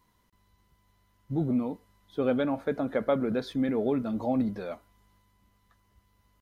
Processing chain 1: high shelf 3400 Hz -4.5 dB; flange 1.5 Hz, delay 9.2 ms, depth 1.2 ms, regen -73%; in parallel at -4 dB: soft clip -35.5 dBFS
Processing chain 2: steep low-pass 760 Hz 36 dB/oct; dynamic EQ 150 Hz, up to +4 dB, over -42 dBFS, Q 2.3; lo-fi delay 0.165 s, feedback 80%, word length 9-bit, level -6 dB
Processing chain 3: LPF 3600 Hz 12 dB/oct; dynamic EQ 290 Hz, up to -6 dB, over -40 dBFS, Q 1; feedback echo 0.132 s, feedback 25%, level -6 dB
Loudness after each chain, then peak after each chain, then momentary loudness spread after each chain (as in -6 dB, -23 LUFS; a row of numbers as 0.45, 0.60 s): -32.0, -27.5, -32.5 LUFS; -18.0, -13.5, -14.5 dBFS; 10, 14, 11 LU